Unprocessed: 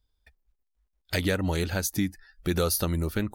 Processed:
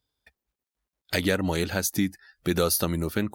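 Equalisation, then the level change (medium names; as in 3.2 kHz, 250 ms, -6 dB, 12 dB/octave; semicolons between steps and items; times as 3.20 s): high-pass 120 Hz 12 dB/octave; +2.5 dB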